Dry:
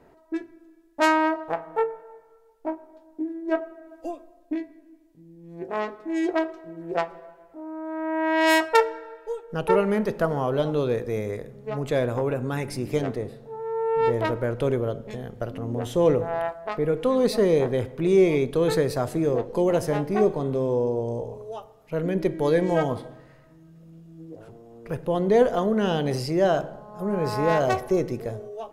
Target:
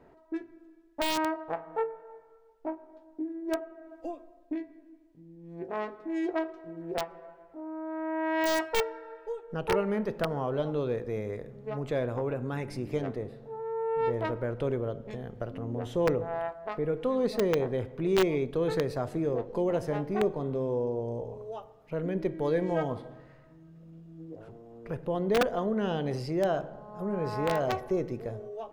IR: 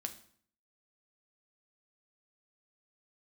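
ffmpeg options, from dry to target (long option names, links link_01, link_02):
-filter_complex "[0:a]asplit=2[link_01][link_02];[link_02]acompressor=threshold=-34dB:ratio=10,volume=-1.5dB[link_03];[link_01][link_03]amix=inputs=2:normalize=0,aeval=exprs='(mod(2.99*val(0)+1,2)-1)/2.99':channel_layout=same,equalizer=frequency=12000:width_type=o:width=1.9:gain=-10.5,volume=-7.5dB"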